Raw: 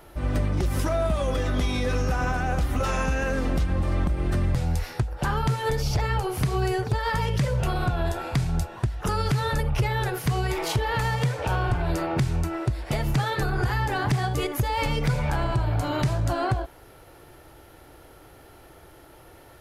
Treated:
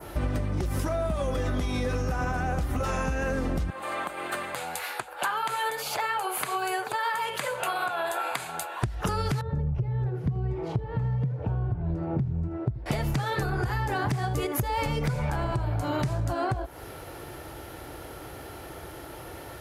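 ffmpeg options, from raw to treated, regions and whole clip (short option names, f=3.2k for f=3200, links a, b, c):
-filter_complex "[0:a]asettb=1/sr,asplit=3[a][b][c];[a]atrim=end=3.704[d];[b]atrim=start=3.7:end=8.82,asetpts=PTS-STARTPTS,afade=t=in:d=0.004:c=qsin,afade=t=out:st=5.116:d=0.004:c=qsin,highpass=850,equalizer=f=5.5k:w=3.5:g=-14.5,bandreject=f=1.9k:w=16[e];[c]atrim=start=8.816[f];[d][e]acrossfade=d=0.004:c1=hsin:c2=qsin[g];[g][f]acrossfade=d=0.004:c1=qsin:c2=hsin,asettb=1/sr,asplit=3[h][i][j];[h]atrim=end=9.414[k];[i]atrim=start=9.41:end=12.86,asetpts=PTS-STARTPTS,afade=t=in:d=0.004:c=qsin,afade=t=out:st=3.446:d=0.004:c=qsin,bandpass=f=120:t=q:w=0.8,aecho=1:1:80:0.211,atrim=end_sample=152145[l];[j]atrim=start=12.856[m];[k][l]acrossfade=d=0.004:c1=hsin:c2=qsin[n];[n][m]acrossfade=d=0.004:c1=qsin:c2=hsin,highpass=47,adynamicequalizer=threshold=0.00398:dfrequency=3400:dqfactor=0.78:tfrequency=3400:tqfactor=0.78:attack=5:release=100:ratio=0.375:range=2:mode=cutabove:tftype=bell,acompressor=threshold=-33dB:ratio=10,volume=8.5dB"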